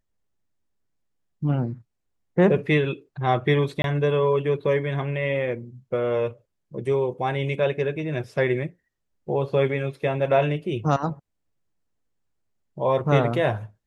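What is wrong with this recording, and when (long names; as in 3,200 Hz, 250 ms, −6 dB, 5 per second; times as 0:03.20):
0:03.82–0:03.84: drop-out 22 ms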